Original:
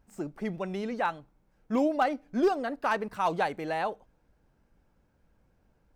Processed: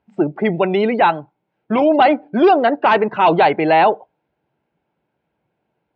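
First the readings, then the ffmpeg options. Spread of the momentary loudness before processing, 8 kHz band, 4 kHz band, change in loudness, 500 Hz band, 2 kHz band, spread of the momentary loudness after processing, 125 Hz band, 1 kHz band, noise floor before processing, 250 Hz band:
9 LU, can't be measured, +16.0 dB, +15.0 dB, +15.5 dB, +13.5 dB, 7 LU, +14.0 dB, +16.0 dB, −70 dBFS, +13.0 dB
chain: -af "afftdn=noise_reduction=18:noise_floor=-49,apsyclip=26.5dB,highpass=frequency=160:width=0.5412,highpass=frequency=160:width=1.3066,equalizer=frequency=190:width_type=q:width=4:gain=-8,equalizer=frequency=260:width_type=q:width=4:gain=-9,equalizer=frequency=510:width_type=q:width=4:gain=-6,equalizer=frequency=1200:width_type=q:width=4:gain=-8,equalizer=frequency=1700:width_type=q:width=4:gain=-6,lowpass=frequency=3400:width=0.5412,lowpass=frequency=3400:width=1.3066,volume=-4dB"

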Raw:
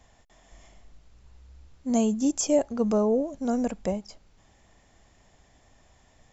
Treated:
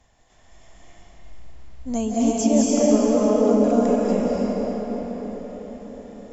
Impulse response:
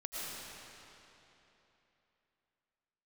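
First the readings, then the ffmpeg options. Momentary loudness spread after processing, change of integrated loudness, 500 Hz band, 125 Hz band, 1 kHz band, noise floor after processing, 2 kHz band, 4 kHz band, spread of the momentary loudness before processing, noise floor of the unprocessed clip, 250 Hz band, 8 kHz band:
19 LU, +5.5 dB, +7.5 dB, +7.0 dB, +8.0 dB, −57 dBFS, +7.0 dB, +5.5 dB, 9 LU, −61 dBFS, +7.5 dB, can't be measured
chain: -filter_complex "[1:a]atrim=start_sample=2205,asetrate=23814,aresample=44100[link_01];[0:a][link_01]afir=irnorm=-1:irlink=0"

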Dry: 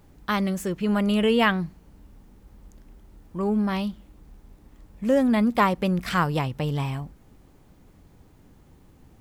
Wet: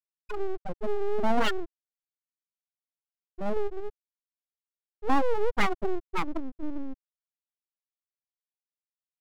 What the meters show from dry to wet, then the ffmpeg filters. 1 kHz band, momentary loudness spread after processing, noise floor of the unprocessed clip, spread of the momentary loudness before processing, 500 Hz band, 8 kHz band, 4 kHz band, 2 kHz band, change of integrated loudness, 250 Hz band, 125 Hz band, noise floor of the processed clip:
−5.0 dB, 14 LU, −55 dBFS, 12 LU, −4.0 dB, can't be measured, −7.5 dB, −7.0 dB, −7.0 dB, −12.0 dB, −17.5 dB, below −85 dBFS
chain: -af "afftfilt=real='re*gte(hypot(re,im),0.447)':imag='im*gte(hypot(re,im),0.447)':win_size=1024:overlap=0.75,aeval=exprs='abs(val(0))':channel_layout=same"

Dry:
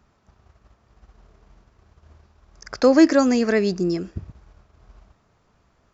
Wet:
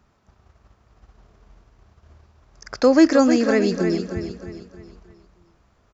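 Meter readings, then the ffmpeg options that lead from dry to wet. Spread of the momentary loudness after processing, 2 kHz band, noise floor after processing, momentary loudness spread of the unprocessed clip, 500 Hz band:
19 LU, +0.5 dB, −62 dBFS, 16 LU, +1.0 dB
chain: -af "aecho=1:1:311|622|933|1244|1555:0.376|0.162|0.0695|0.0299|0.0128"

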